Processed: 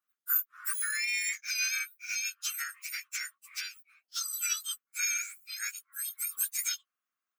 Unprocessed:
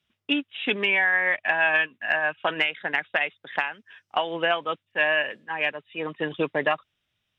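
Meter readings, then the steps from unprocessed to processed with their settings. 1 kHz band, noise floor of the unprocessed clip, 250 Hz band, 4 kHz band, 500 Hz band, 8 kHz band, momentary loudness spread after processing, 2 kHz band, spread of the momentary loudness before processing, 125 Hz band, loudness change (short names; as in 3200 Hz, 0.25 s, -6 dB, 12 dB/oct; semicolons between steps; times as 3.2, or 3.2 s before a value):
-21.0 dB, -80 dBFS, under -40 dB, -6.5 dB, under -40 dB, n/a, 10 LU, -13.0 dB, 10 LU, under -40 dB, -7.5 dB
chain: spectrum mirrored in octaves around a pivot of 2000 Hz; differentiator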